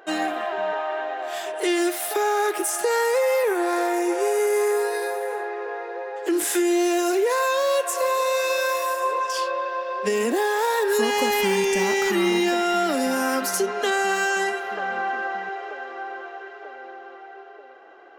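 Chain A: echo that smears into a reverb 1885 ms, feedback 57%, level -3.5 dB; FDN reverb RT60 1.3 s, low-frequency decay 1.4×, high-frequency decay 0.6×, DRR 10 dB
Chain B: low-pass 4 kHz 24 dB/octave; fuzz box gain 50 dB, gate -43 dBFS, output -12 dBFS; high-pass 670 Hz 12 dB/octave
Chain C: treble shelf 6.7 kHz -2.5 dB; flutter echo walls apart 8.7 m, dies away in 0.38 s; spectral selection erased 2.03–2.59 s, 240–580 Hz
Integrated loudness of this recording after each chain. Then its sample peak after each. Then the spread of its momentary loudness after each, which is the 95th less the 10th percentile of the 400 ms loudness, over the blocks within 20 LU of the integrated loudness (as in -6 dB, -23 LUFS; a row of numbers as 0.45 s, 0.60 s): -21.5 LUFS, -16.0 LUFS, -22.5 LUFS; -7.0 dBFS, -6.0 dBFS, -8.5 dBFS; 7 LU, 4 LU, 14 LU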